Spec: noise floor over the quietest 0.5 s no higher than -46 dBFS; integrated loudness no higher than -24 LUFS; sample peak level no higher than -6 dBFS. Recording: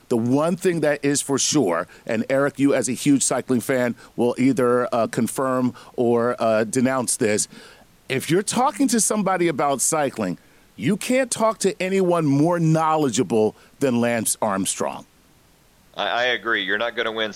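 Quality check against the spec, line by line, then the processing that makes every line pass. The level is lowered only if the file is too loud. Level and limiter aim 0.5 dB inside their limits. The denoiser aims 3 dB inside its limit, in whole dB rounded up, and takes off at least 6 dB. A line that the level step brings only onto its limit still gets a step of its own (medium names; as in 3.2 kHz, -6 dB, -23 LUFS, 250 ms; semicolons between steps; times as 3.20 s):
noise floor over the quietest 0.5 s -55 dBFS: pass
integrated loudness -21.0 LUFS: fail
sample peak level -8.0 dBFS: pass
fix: trim -3.5 dB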